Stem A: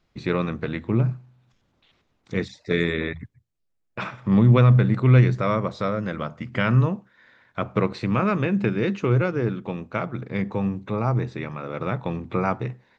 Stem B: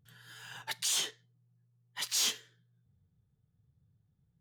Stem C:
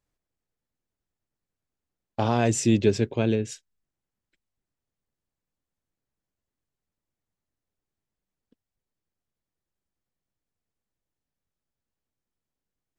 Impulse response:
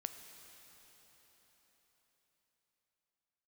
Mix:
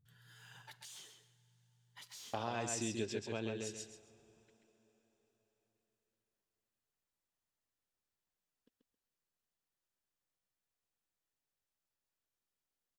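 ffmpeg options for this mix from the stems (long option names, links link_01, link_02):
-filter_complex "[1:a]lowshelf=frequency=140:gain=9,acompressor=threshold=-43dB:ratio=4,volume=-13.5dB,asplit=3[link_01][link_02][link_03];[link_02]volume=-5.5dB[link_04];[link_03]volume=-5dB[link_05];[2:a]lowshelf=frequency=440:gain=-12,bandreject=frequency=2200:width=19,adelay=150,volume=-3dB,asplit=3[link_06][link_07][link_08];[link_07]volume=-16dB[link_09];[link_08]volume=-4dB[link_10];[3:a]atrim=start_sample=2205[link_11];[link_04][link_09]amix=inputs=2:normalize=0[link_12];[link_12][link_11]afir=irnorm=-1:irlink=0[link_13];[link_05][link_10]amix=inputs=2:normalize=0,aecho=0:1:134|268|402|536:1|0.23|0.0529|0.0122[link_14];[link_01][link_06][link_13][link_14]amix=inputs=4:normalize=0,acompressor=threshold=-40dB:ratio=2.5"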